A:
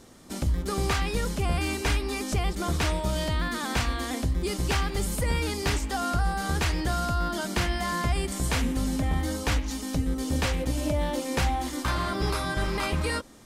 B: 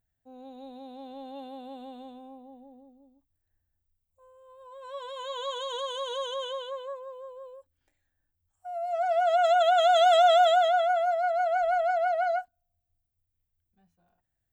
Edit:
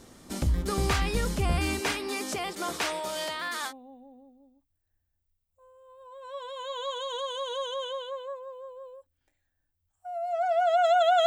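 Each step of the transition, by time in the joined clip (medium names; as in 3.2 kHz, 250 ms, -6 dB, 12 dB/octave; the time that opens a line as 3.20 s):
A
1.79–3.73 s: high-pass 230 Hz -> 740 Hz
3.70 s: go over to B from 2.30 s, crossfade 0.06 s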